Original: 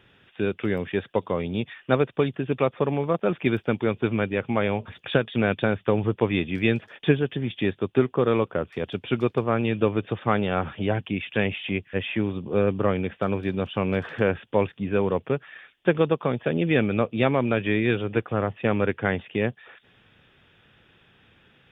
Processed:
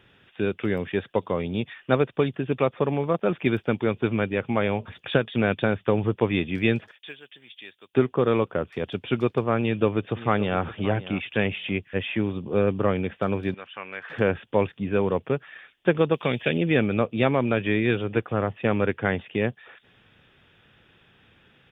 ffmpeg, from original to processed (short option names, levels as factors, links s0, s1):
-filter_complex "[0:a]asettb=1/sr,asplit=3[s0][s1][s2];[s0]atrim=end=6.914[s3];[s1]atrim=start=6.91:end=7.94,asetpts=PTS-STARTPTS,afade=t=in:d=0.004:c=qsin,afade=t=out:st=1.026:d=0.004:c=qsin,aderivative[s4];[s2]atrim=start=7.936[s5];[s3][s4]acrossfade=d=0.004:c1=hsin:c2=qsin[s6];[s6][s5]acrossfade=d=0.004:c1=qsin:c2=hsin,asplit=2[s7][s8];[s8]afade=t=in:st=9.59:d=0.01,afade=t=out:st=10.63:d=0.01,aecho=0:1:570|1140:0.177828|0.0177828[s9];[s7][s9]amix=inputs=2:normalize=0,asettb=1/sr,asplit=3[s10][s11][s12];[s10]atrim=end=13.544[s13];[s11]atrim=start=13.54:end=14.1,asetpts=PTS-STARTPTS,afade=t=in:d=0.004:c=qsin,afade=t=out:st=0.556:d=0.004:c=qsin,bandpass=f=1800:t=q:w=1.6[s14];[s12]atrim=start=14.096[s15];[s13][s14]acrossfade=d=0.004:c1=hsin:c2=qsin[s16];[s16][s15]acrossfade=d=0.004:c1=qsin:c2=hsin,asettb=1/sr,asplit=3[s17][s18][s19];[s17]atrim=end=16.144[s20];[s18]atrim=start=16.14:end=16.58,asetpts=PTS-STARTPTS,afade=t=in:d=0.004:c=qsin,afade=t=out:st=0.436:d=0.004:c=qsin,highshelf=f=1700:t=q:w=1.5:g=9[s21];[s19]atrim=start=16.576[s22];[s20][s21]acrossfade=d=0.004:c1=hsin:c2=qsin[s23];[s23][s22]acrossfade=d=0.004:c1=qsin:c2=hsin"